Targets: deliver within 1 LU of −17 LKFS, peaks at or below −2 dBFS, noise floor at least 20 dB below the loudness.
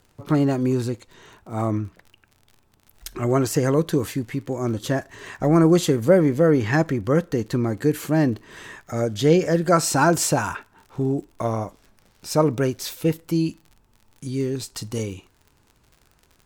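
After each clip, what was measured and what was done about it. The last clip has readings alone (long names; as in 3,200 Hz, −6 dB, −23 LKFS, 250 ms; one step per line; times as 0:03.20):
crackle rate 49 per second; integrated loudness −22.0 LKFS; sample peak −4.0 dBFS; target loudness −17.0 LKFS
→ click removal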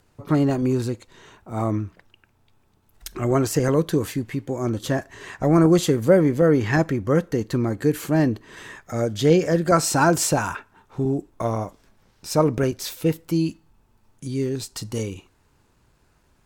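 crackle rate 0.79 per second; integrated loudness −22.0 LKFS; sample peak −4.0 dBFS; target loudness −17.0 LKFS
→ level +5 dB
brickwall limiter −2 dBFS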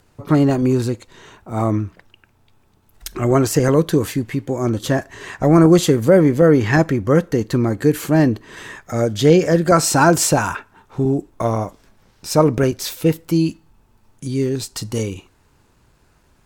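integrated loudness −17.0 LKFS; sample peak −2.0 dBFS; background noise floor −58 dBFS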